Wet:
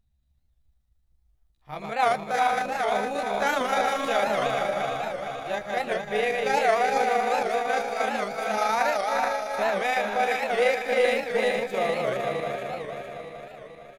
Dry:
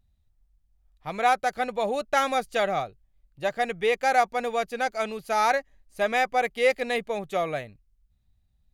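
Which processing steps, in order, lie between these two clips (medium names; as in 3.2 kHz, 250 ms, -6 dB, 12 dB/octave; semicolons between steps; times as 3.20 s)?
backward echo that repeats 141 ms, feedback 74%, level -3 dB; granular stretch 1.6×, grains 77 ms; on a send: delay 378 ms -5.5 dB; on the sum: warped record 78 rpm, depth 160 cents; trim -2 dB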